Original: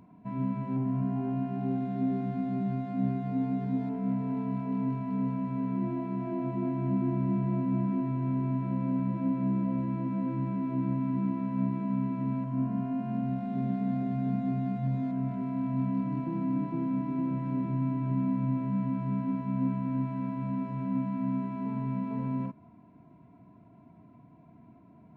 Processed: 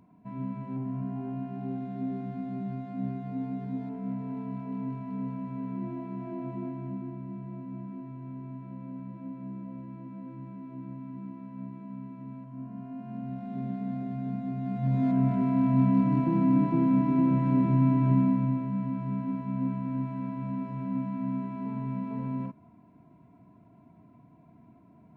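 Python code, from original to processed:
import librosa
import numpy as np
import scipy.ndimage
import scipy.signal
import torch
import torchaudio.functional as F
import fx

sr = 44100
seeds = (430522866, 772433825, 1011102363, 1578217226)

y = fx.gain(x, sr, db=fx.line((6.56, -4.0), (7.22, -11.0), (12.58, -11.0), (13.54, -3.5), (14.56, -3.5), (15.09, 7.0), (18.11, 7.0), (18.69, -1.0)))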